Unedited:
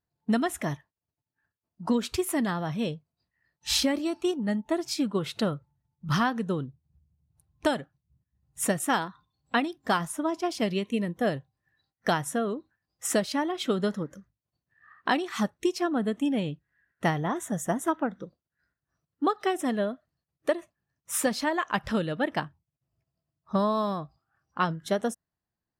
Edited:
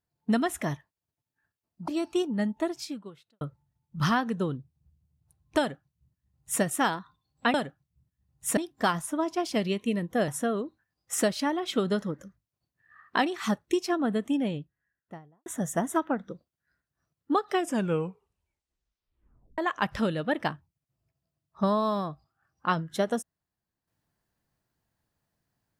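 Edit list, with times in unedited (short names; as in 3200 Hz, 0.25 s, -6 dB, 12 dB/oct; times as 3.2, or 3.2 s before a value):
1.88–3.97 cut
4.67–5.5 fade out quadratic
7.68–8.71 copy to 9.63
11.34–12.2 cut
16.09–17.38 studio fade out
19.45 tape stop 2.05 s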